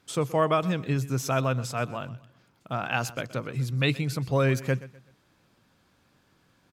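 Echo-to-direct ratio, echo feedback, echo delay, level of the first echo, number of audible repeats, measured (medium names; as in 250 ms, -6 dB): -17.5 dB, 34%, 125 ms, -18.0 dB, 2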